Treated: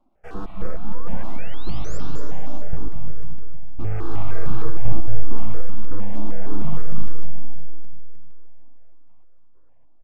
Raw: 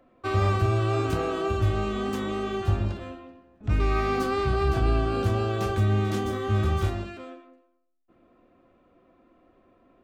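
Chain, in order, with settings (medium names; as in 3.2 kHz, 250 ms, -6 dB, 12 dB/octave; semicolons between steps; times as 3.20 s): tilt EQ -3 dB/octave; full-wave rectifier; trance gate "xxx.x..xx..xxx" 99 bpm -60 dB; painted sound rise, 0.62–1.98 s, 490–7600 Hz -36 dBFS; feedback delay 228 ms, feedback 49%, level -10 dB; algorithmic reverb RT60 2.5 s, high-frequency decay 0.75×, pre-delay 110 ms, DRR 5 dB; stepped phaser 6.5 Hz 470–2000 Hz; trim -8 dB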